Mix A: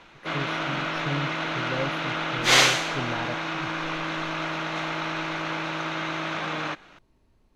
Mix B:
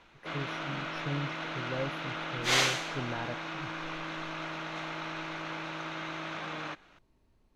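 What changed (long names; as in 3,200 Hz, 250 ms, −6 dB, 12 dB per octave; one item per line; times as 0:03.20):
speech −4.5 dB
background −8.5 dB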